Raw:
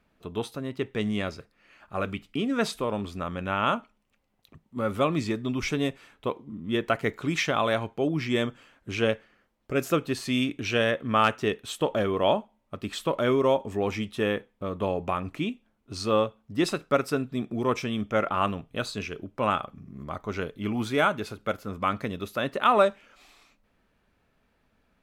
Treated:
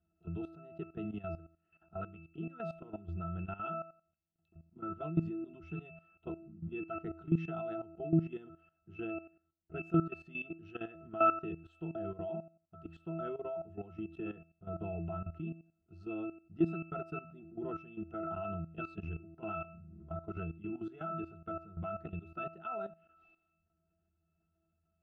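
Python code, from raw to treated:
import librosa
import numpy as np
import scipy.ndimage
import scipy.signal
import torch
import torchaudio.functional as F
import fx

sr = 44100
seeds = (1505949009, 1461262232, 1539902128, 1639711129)

p1 = fx.rider(x, sr, range_db=3, speed_s=0.5)
p2 = x + F.gain(torch.from_numpy(p1), 0.5).numpy()
p3 = fx.octave_resonator(p2, sr, note='E', decay_s=0.38)
p4 = fx.level_steps(p3, sr, step_db=14)
y = F.gain(torch.from_numpy(p4), 3.5).numpy()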